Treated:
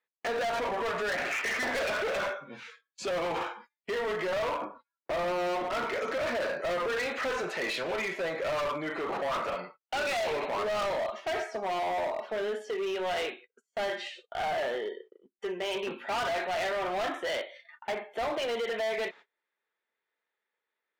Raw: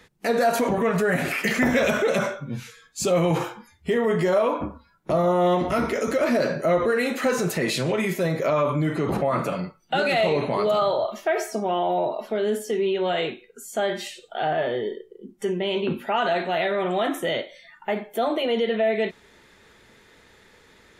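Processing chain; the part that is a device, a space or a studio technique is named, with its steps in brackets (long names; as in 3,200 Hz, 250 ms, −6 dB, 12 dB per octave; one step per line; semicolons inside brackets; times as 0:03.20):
walkie-talkie (band-pass filter 580–3,000 Hz; hard clipping −28.5 dBFS, distortion −7 dB; noise gate −49 dBFS, range −30 dB)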